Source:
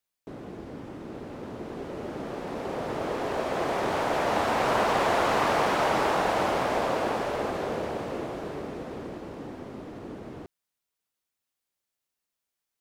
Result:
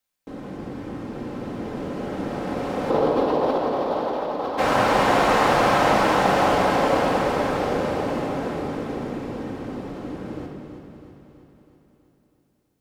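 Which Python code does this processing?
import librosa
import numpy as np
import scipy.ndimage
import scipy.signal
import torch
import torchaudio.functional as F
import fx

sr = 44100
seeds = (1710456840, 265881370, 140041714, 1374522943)

y = fx.graphic_eq(x, sr, hz=(125, 250, 500, 1000, 2000, 4000, 8000), db=(-4, 6, 10, 7, -6, 8, -11), at=(2.9, 4.58))
y = fx.over_compress(y, sr, threshold_db=-23.0, ratio=-0.5)
y = fx.echo_feedback(y, sr, ms=325, feedback_pct=57, wet_db=-9.0)
y = fx.room_shoebox(y, sr, seeds[0], volume_m3=2100.0, walls='mixed', distance_m=2.1)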